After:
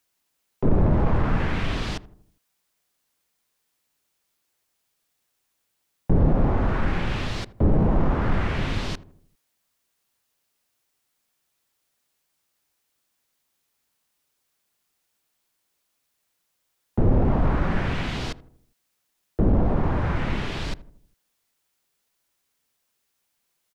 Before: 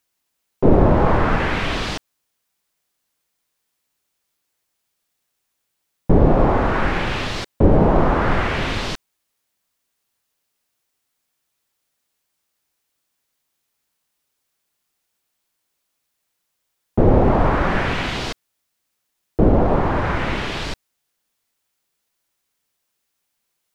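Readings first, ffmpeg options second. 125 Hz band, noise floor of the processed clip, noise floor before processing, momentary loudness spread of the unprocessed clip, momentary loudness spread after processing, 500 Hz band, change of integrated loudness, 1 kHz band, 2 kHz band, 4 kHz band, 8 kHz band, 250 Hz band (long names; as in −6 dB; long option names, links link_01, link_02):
−3.0 dB, −75 dBFS, −75 dBFS, 13 LU, 12 LU, −9.5 dB, −6.0 dB, −10.0 dB, −8.5 dB, −7.5 dB, can't be measured, −5.5 dB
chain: -filter_complex "[0:a]asoftclip=type=tanh:threshold=-10.5dB,acrossover=split=250[link_01][link_02];[link_02]acompressor=threshold=-43dB:ratio=1.5[link_03];[link_01][link_03]amix=inputs=2:normalize=0,asplit=2[link_04][link_05];[link_05]adelay=80,lowpass=frequency=900:poles=1,volume=-16dB,asplit=2[link_06][link_07];[link_07]adelay=80,lowpass=frequency=900:poles=1,volume=0.54,asplit=2[link_08][link_09];[link_09]adelay=80,lowpass=frequency=900:poles=1,volume=0.54,asplit=2[link_10][link_11];[link_11]adelay=80,lowpass=frequency=900:poles=1,volume=0.54,asplit=2[link_12][link_13];[link_13]adelay=80,lowpass=frequency=900:poles=1,volume=0.54[link_14];[link_04][link_06][link_08][link_10][link_12][link_14]amix=inputs=6:normalize=0"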